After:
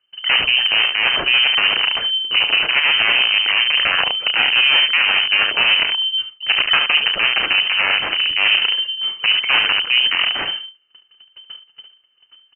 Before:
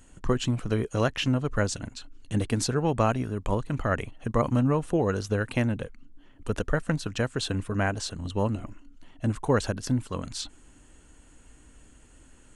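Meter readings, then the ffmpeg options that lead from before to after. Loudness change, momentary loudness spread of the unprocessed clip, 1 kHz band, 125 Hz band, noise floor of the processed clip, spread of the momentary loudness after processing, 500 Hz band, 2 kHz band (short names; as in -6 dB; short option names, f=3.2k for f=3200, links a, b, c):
+14.0 dB, 10 LU, +7.5 dB, under -15 dB, -59 dBFS, 5 LU, -5.5 dB, +21.5 dB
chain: -af "agate=range=-39dB:threshold=-47dB:ratio=16:detection=peak,equalizer=f=570:t=o:w=0.67:g=-4.5,areverse,acompressor=threshold=-36dB:ratio=4,areverse,aeval=exprs='0.0841*(cos(1*acos(clip(val(0)/0.0841,-1,1)))-cos(1*PI/2))+0.00596*(cos(3*acos(clip(val(0)/0.0841,-1,1)))-cos(3*PI/2))+0.00299*(cos(5*acos(clip(val(0)/0.0841,-1,1)))-cos(5*PI/2))+0.0188*(cos(7*acos(clip(val(0)/0.0841,-1,1)))-cos(7*PI/2))':c=same,aecho=1:1:33|72:0.211|0.266,aresample=16000,asoftclip=type=tanh:threshold=-35.5dB,aresample=44100,lowpass=f=2.6k:t=q:w=0.5098,lowpass=f=2.6k:t=q:w=0.6013,lowpass=f=2.6k:t=q:w=0.9,lowpass=f=2.6k:t=q:w=2.563,afreqshift=-3100,alimiter=level_in=35dB:limit=-1dB:release=50:level=0:latency=1,volume=-3.5dB"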